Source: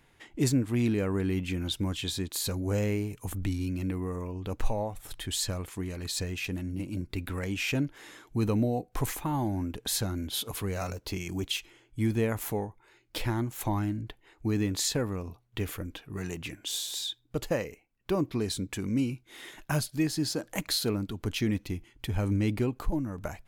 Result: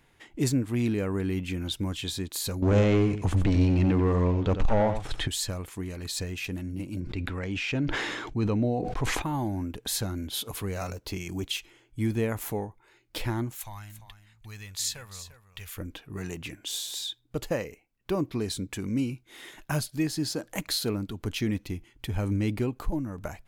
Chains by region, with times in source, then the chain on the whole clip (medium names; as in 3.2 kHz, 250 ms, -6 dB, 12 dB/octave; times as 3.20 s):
2.62–5.28 s: waveshaping leveller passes 3 + distance through air 120 m + delay 90 ms -9 dB
7.00–9.22 s: low-pass 4.8 kHz + decay stretcher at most 29 dB/s
13.55–15.77 s: amplifier tone stack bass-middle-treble 10-0-10 + delay 346 ms -12.5 dB
whole clip: none